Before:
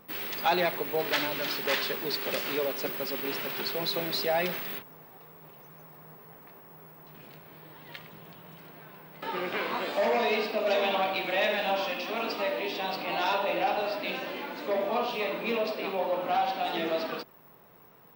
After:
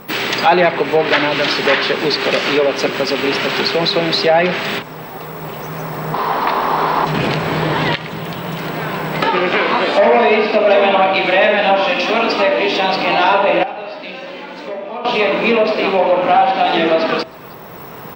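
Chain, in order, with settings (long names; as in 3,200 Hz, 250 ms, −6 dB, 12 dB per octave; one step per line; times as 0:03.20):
loose part that buzzes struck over −45 dBFS, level −35 dBFS
camcorder AGC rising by 6.4 dB per second
treble cut that deepens with the level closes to 2,700 Hz, closed at −24 dBFS
0:06.14–0:07.05: graphic EQ with 10 bands 125 Hz −12 dB, 250 Hz +3 dB, 1,000 Hz +12 dB, 4,000 Hz +11 dB, 8,000 Hz −7 dB
in parallel at +0.5 dB: downward compressor, threshold −35 dBFS, peak gain reduction 13 dB
0:13.63–0:15.05: on the sum: tuned comb filter 180 Hz, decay 0.87 s, harmonics odd, mix 80%
on a send: single-tap delay 313 ms −24 dB
on the sum: boost into a limiter +14 dB
level −1 dB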